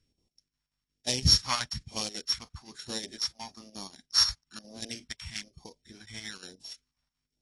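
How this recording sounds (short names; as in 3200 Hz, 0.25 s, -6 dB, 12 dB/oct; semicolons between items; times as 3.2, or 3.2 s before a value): a buzz of ramps at a fixed pitch in blocks of 8 samples; chopped level 5.6 Hz, depth 60%, duty 70%; phasing stages 2, 1.1 Hz, lowest notch 370–1400 Hz; AAC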